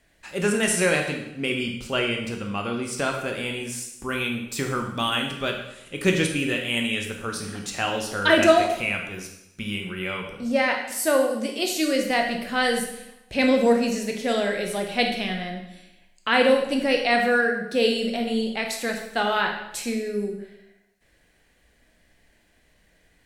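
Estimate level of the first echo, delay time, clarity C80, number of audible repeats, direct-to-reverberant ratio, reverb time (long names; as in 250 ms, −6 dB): no echo audible, no echo audible, 8.0 dB, no echo audible, 2.0 dB, 0.90 s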